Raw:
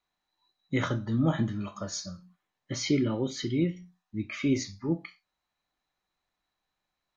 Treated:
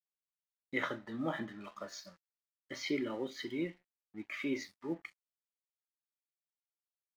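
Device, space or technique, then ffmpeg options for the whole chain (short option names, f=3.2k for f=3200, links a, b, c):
pocket radio on a weak battery: -filter_complex "[0:a]asettb=1/sr,asplit=3[a][b][c];[a]atrim=end=3.744[d];[b]atrim=start=3.74:end=4.31,asetpts=PTS-STARTPTS,afade=t=in:d=0.004:c=qsin,afade=t=out:st=0.566:d=0.004:c=qsin,lowpass=2.8k[e];[c]atrim=start=4.306[f];[d][e]acrossfade=d=0.004:c1=hsin:c2=qsin[g];[g][f]acrossfade=d=0.004:c1=qsin:c2=hsin,highpass=340,lowpass=4.1k,aeval=exprs='sgn(val(0))*max(abs(val(0))-0.00168,0)':c=same,equalizer=f=1.9k:t=o:w=0.3:g=7,volume=-4.5dB"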